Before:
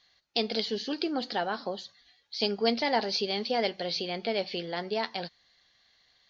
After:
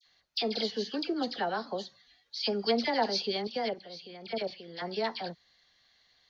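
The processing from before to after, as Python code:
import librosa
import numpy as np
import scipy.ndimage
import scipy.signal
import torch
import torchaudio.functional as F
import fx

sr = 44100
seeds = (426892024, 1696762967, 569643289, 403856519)

y = fx.dynamic_eq(x, sr, hz=2600.0, q=2.2, threshold_db=-50.0, ratio=4.0, max_db=-3)
y = fx.level_steps(y, sr, step_db=15, at=(3.41, 4.76))
y = fx.dispersion(y, sr, late='lows', ms=63.0, hz=1700.0)
y = F.gain(torch.from_numpy(y), -1.0).numpy()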